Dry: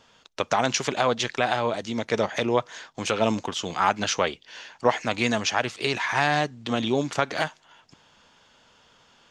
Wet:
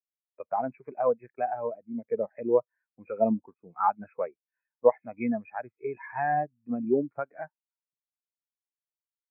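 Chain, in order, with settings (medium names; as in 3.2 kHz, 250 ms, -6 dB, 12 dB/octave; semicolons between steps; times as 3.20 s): brick-wall FIR low-pass 2.6 kHz; spectral contrast expander 2.5:1; trim -2.5 dB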